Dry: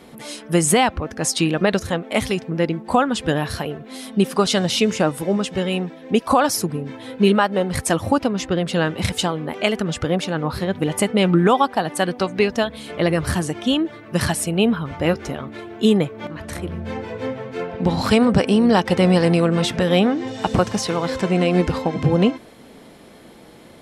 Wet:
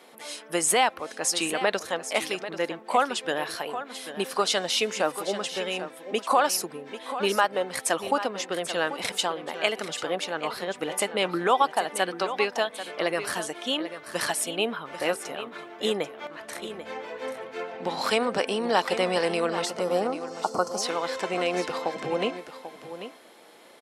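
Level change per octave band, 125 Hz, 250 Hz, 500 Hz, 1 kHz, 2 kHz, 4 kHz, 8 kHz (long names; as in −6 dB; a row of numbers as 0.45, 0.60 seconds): −22.0, −15.5, −6.5, −3.5, −3.5, −3.5, −3.0 decibels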